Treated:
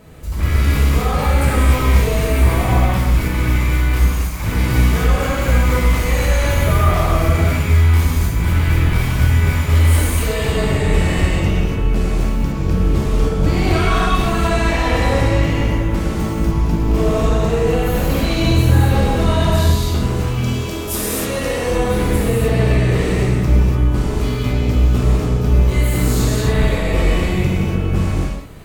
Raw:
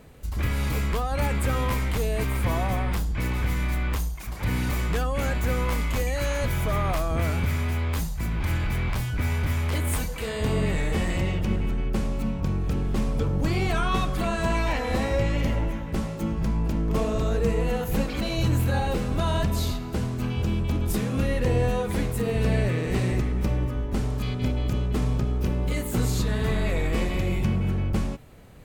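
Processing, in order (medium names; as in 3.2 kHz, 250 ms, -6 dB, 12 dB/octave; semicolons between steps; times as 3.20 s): saturation -20 dBFS, distortion -17 dB; 20.37–21.68 s: tone controls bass -13 dB, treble +7 dB; gated-style reverb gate 320 ms flat, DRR -7 dB; trim +3.5 dB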